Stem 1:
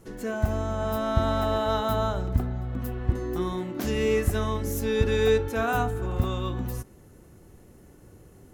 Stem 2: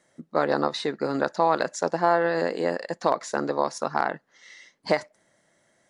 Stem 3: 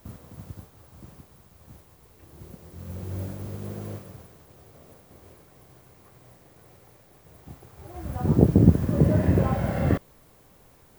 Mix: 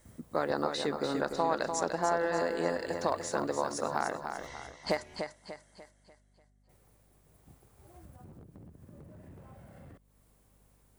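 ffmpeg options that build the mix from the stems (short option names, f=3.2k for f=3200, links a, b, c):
-filter_complex "[0:a]acompressor=threshold=-32dB:ratio=6,aeval=exprs='val(0)*sin(2*PI*300*n/s)':c=same,asplit=2[a][b];[b]adelay=8.5,afreqshift=1[c];[a][c]amix=inputs=2:normalize=1,adelay=1100,volume=-9dB[d];[1:a]acompressor=threshold=-31dB:ratio=1.5,volume=-3dB,asplit=3[e][f][g];[f]volume=-6.5dB[h];[2:a]alimiter=limit=-11.5dB:level=0:latency=1:release=390,asoftclip=type=hard:threshold=-20.5dB,volume=-13.5dB,asplit=3[i][j][k];[i]atrim=end=4.47,asetpts=PTS-STARTPTS,afade=t=out:st=4.466:d=0.004:c=hsin[l];[j]atrim=start=4.47:end=6.69,asetpts=PTS-STARTPTS,volume=0[m];[k]atrim=start=6.69,asetpts=PTS-STARTPTS,afade=t=in:d=0.004:c=hsin[n];[l][m][n]concat=n=3:v=0:a=1[o];[g]apad=whole_len=425112[p];[d][p]sidechaingate=range=-33dB:threshold=-58dB:ratio=16:detection=peak[q];[q][o]amix=inputs=2:normalize=0,acompressor=threshold=-49dB:ratio=16,volume=0dB[r];[h]aecho=0:1:295|590|885|1180|1475|1770:1|0.41|0.168|0.0689|0.0283|0.0116[s];[e][r][s]amix=inputs=3:normalize=0,equalizer=f=9.1k:t=o:w=0.8:g=7.5,aeval=exprs='val(0)+0.000501*(sin(2*PI*50*n/s)+sin(2*PI*2*50*n/s)/2+sin(2*PI*3*50*n/s)/3+sin(2*PI*4*50*n/s)/4+sin(2*PI*5*50*n/s)/5)':c=same"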